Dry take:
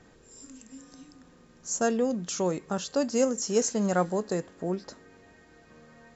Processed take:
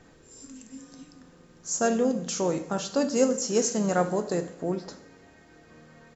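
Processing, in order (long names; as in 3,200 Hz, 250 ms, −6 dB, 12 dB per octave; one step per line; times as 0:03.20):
coupled-rooms reverb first 0.73 s, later 3.3 s, from −25 dB, DRR 7.5 dB
pitch-shifted copies added −3 semitones −15 dB
level +1 dB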